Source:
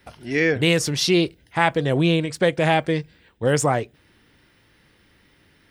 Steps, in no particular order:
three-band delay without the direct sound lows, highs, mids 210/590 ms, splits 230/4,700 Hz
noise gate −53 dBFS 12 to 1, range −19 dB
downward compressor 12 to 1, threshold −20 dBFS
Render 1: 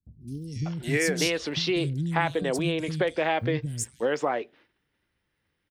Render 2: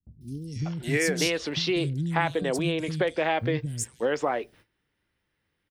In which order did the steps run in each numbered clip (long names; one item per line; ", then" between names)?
downward compressor, then noise gate, then three-band delay without the direct sound
downward compressor, then three-band delay without the direct sound, then noise gate